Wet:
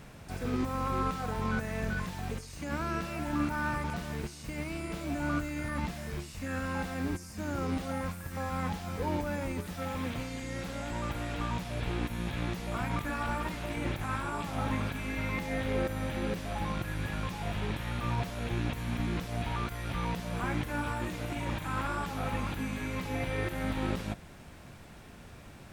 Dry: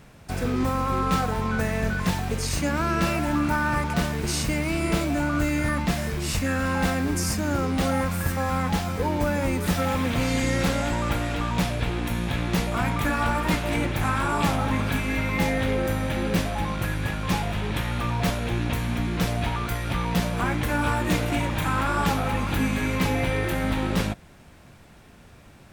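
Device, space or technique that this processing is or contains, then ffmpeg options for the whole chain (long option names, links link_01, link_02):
de-esser from a sidechain: -filter_complex "[0:a]asplit=2[link_01][link_02];[link_02]highpass=frequency=4200:width=0.5412,highpass=frequency=4200:width=1.3066,apad=whole_len=1134373[link_03];[link_01][link_03]sidechaincompress=threshold=-51dB:ratio=5:attack=1:release=33"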